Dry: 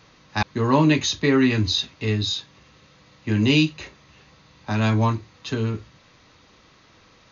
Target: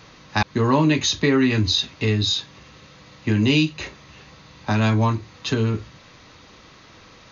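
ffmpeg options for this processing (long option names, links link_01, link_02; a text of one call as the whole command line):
ffmpeg -i in.wav -af "acompressor=threshold=-26dB:ratio=2,volume=6.5dB" out.wav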